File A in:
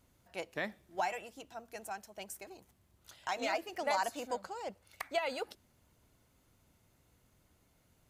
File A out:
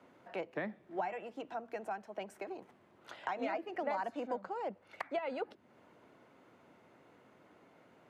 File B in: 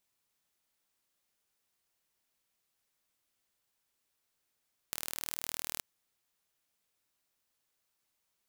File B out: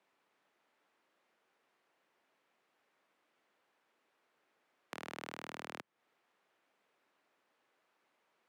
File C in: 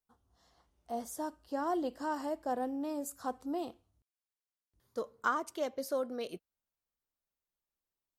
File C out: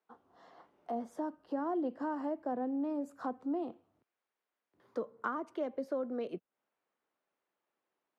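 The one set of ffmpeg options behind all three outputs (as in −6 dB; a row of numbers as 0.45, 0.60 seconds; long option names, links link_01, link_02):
-filter_complex "[0:a]aemphasis=mode=reproduction:type=bsi,acrossover=split=210[link_01][link_02];[link_02]acompressor=threshold=-53dB:ratio=3[link_03];[link_01][link_03]amix=inputs=2:normalize=0,acrossover=split=290 2700:gain=0.126 1 0.224[link_04][link_05][link_06];[link_04][link_05][link_06]amix=inputs=3:normalize=0,acrossover=split=130|5100[link_07][link_08][link_09];[link_07]acrusher=bits=3:dc=4:mix=0:aa=0.000001[link_10];[link_10][link_08][link_09]amix=inputs=3:normalize=0,volume=13dB"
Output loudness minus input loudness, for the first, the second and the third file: −2.0, −9.5, −0.5 LU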